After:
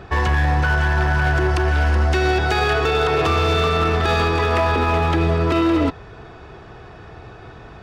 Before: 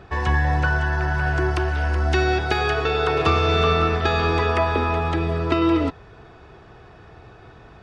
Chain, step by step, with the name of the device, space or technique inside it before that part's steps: limiter into clipper (peak limiter -14.5 dBFS, peak gain reduction 7.5 dB; hard clipper -19 dBFS, distortion -17 dB); trim +6 dB

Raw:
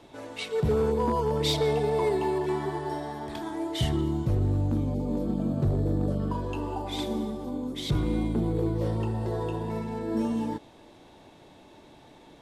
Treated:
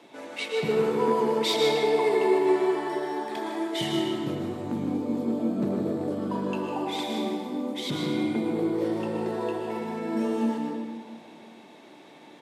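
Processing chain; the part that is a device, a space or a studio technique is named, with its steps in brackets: PA in a hall (high-pass 180 Hz 24 dB/octave; peaking EQ 2.2 kHz +5 dB 0.67 oct; delay 154 ms -10 dB; reverberation RT60 2.0 s, pre-delay 103 ms, DRR 1.5 dB)

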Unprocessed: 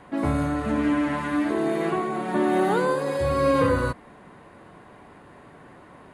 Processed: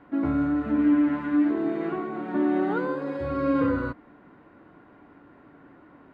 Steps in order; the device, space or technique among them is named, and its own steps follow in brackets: inside a cardboard box (low-pass 2.9 kHz 12 dB/octave; small resonant body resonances 290/1400 Hz, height 11 dB, ringing for 45 ms); trim -7.5 dB

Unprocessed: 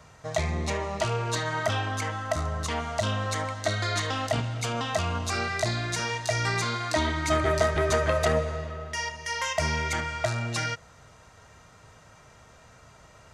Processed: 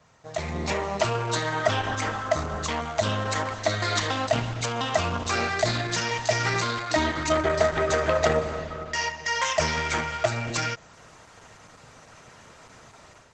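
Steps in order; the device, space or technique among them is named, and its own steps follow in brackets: video call (high-pass 150 Hz 6 dB/octave; level rider gain up to 11 dB; trim -5 dB; Opus 12 kbps 48 kHz)

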